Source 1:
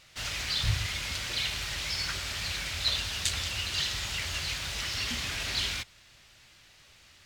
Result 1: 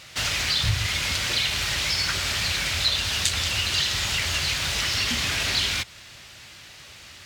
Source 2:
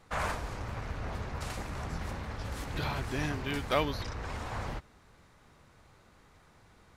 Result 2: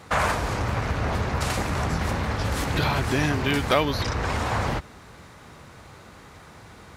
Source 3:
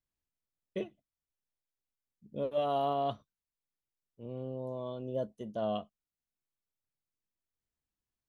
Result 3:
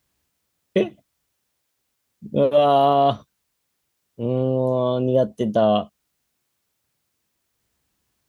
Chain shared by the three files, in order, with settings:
HPF 59 Hz; compressor 2:1, threshold -37 dBFS; normalise peaks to -6 dBFS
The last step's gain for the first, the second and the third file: +12.0, +14.5, +20.5 dB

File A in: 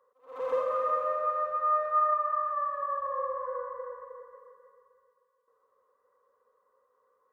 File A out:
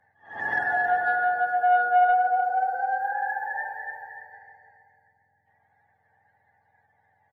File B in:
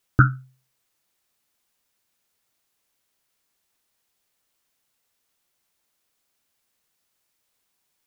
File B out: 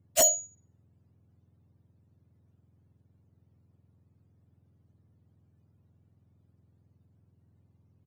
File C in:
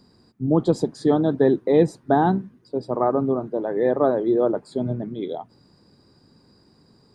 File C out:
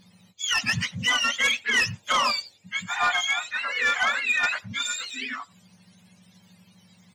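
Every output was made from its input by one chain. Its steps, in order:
spectrum mirrored in octaves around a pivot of 940 Hz; speakerphone echo 90 ms, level -27 dB; sine folder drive 8 dB, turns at -7 dBFS; match loudness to -24 LUFS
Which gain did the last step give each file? -4.0, -9.5, -10.0 dB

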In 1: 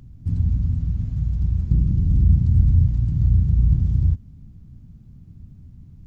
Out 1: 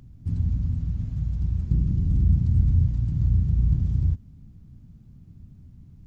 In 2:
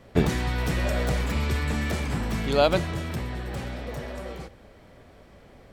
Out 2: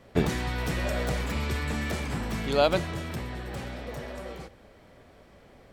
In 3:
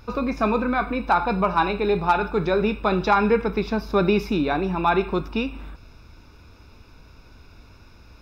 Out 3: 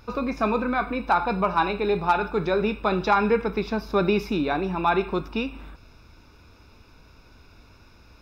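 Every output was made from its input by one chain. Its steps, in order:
low shelf 170 Hz -3.5 dB; normalise peaks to -9 dBFS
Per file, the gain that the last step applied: -1.5, -1.5, -1.5 dB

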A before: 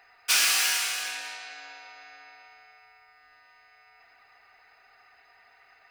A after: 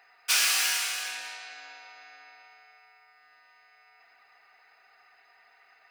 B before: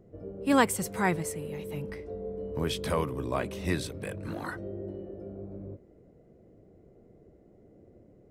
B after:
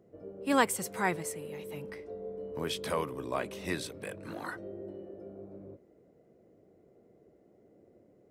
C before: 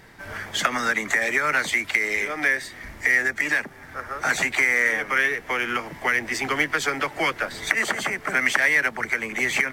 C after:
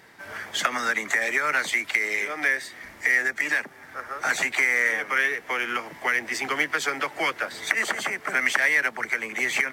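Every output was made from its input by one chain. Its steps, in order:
HPF 310 Hz 6 dB/oct; gain -1.5 dB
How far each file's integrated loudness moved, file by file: -1.5, -3.0, -1.5 LU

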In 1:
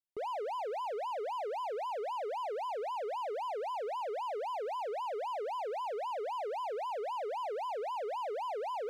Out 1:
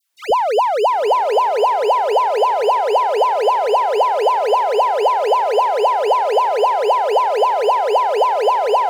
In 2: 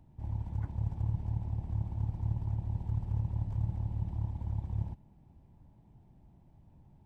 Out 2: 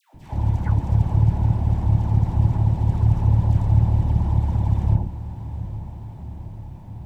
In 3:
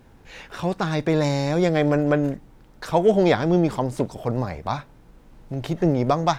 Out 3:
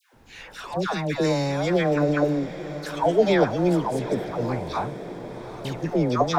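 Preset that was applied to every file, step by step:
low shelf 260 Hz -4.5 dB; dispersion lows, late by 0.142 s, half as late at 1000 Hz; on a send: diffused feedback echo 0.819 s, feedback 61%, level -13 dB; on the sum: normalise peaks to -6 dBFS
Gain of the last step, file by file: +22.0, +19.0, 0.0 dB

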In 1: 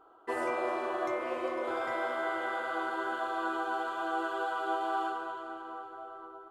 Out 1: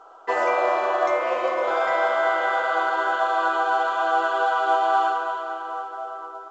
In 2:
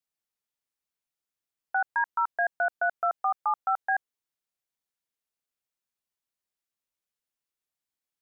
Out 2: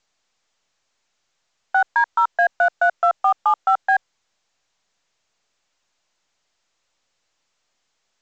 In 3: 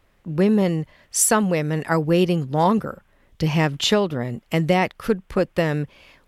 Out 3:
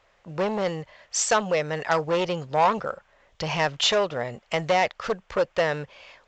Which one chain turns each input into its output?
added harmonics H 3 -12 dB, 5 -12 dB, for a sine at -5 dBFS; resonant low shelf 410 Hz -10.5 dB, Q 1.5; µ-law 128 kbps 16000 Hz; normalise peaks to -9 dBFS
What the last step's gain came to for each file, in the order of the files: +7.0, +4.5, -2.0 dB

